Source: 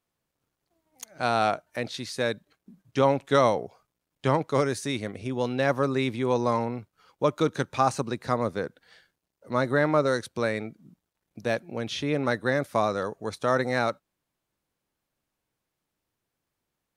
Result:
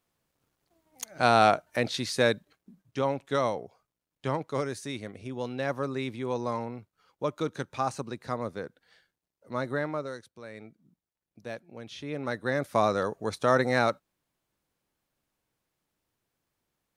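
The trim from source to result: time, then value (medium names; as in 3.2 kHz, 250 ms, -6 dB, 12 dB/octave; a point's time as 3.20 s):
2.27 s +3.5 dB
2.99 s -6.5 dB
9.74 s -6.5 dB
10.42 s -19 dB
10.64 s -11.5 dB
11.90 s -11.5 dB
12.87 s +1 dB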